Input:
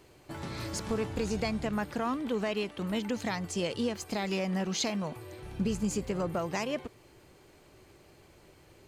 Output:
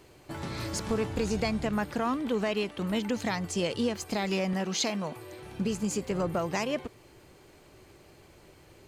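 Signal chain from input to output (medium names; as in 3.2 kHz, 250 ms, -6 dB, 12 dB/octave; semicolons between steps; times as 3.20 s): 4.53–6.11 s: high-pass 180 Hz 6 dB/octave; trim +2.5 dB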